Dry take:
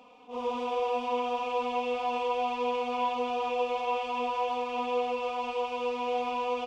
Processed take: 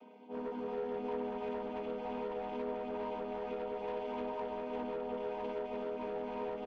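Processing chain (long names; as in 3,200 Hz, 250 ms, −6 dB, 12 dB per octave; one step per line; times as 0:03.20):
channel vocoder with a chord as carrier minor triad, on G#3
high-shelf EQ 6,000 Hz −5 dB
comb filter 4.4 ms, depth 60%
downward compressor 4 to 1, threshold −33 dBFS, peak gain reduction 9.5 dB
soft clipping −32 dBFS, distortion −15 dB
bucket-brigade delay 313 ms, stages 2,048, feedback 79%, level −3.5 dB
level −2 dB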